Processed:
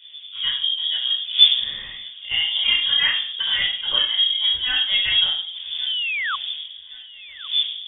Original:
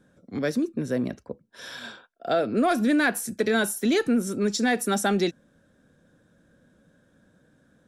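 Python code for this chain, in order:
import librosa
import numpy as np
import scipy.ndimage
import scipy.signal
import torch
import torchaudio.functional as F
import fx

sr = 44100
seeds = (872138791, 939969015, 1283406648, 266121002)

p1 = fx.dmg_wind(x, sr, seeds[0], corner_hz=320.0, level_db=-37.0)
p2 = fx.room_shoebox(p1, sr, seeds[1], volume_m3=710.0, walls='furnished', distance_m=4.9)
p3 = fx.spec_paint(p2, sr, seeds[2], shape='rise', start_s=5.86, length_s=0.5, low_hz=350.0, high_hz=2500.0, level_db=-19.0)
p4 = fx.freq_invert(p3, sr, carrier_hz=3500)
p5 = p4 + fx.echo_feedback(p4, sr, ms=1118, feedback_pct=44, wet_db=-20.0, dry=0)
y = p5 * librosa.db_to_amplitude(-5.5)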